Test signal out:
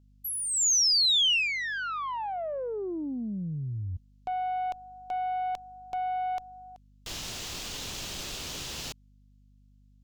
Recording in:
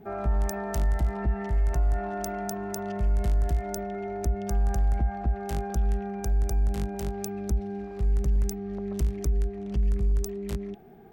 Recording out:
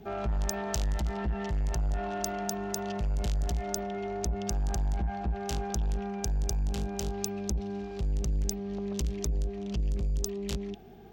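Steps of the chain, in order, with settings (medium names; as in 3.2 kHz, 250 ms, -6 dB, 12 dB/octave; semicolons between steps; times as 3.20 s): valve stage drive 25 dB, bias 0.2; high-order bell 4.4 kHz +10 dB; hum 50 Hz, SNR 28 dB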